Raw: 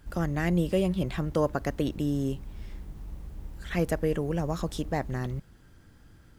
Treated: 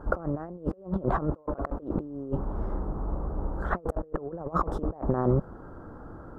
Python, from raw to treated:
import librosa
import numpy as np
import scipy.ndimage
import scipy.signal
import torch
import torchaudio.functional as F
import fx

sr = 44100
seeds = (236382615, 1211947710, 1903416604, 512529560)

y = fx.curve_eq(x, sr, hz=(130.0, 520.0, 1300.0, 2300.0), db=(0, 13, 11, -24))
y = fx.over_compress(y, sr, threshold_db=-29.0, ratio=-0.5)